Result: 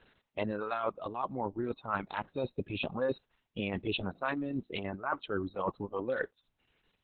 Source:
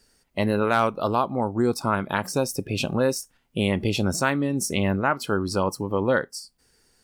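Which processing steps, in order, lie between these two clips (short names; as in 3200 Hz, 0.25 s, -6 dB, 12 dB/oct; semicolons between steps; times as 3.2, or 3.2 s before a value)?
rippled Chebyshev low-pass 3900 Hz, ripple 3 dB; low shelf 100 Hz -4 dB; reverse; compressor 5:1, threshold -35 dBFS, peak gain reduction 16.5 dB; reverse; reverb removal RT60 2 s; gain +6 dB; Opus 6 kbps 48000 Hz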